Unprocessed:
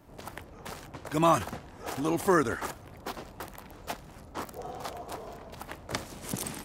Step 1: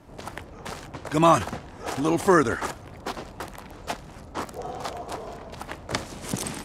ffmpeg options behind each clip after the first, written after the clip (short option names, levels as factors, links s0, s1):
-af "lowpass=9800,volume=1.88"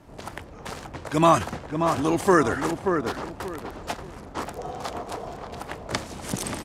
-filter_complex "[0:a]asplit=2[s0][s1];[s1]adelay=582,lowpass=f=1400:p=1,volume=0.562,asplit=2[s2][s3];[s3]adelay=582,lowpass=f=1400:p=1,volume=0.3,asplit=2[s4][s5];[s5]adelay=582,lowpass=f=1400:p=1,volume=0.3,asplit=2[s6][s7];[s7]adelay=582,lowpass=f=1400:p=1,volume=0.3[s8];[s0][s2][s4][s6][s8]amix=inputs=5:normalize=0"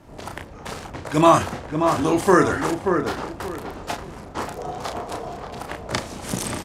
-filter_complex "[0:a]asplit=2[s0][s1];[s1]adelay=33,volume=0.531[s2];[s0][s2]amix=inputs=2:normalize=0,volume=1.26"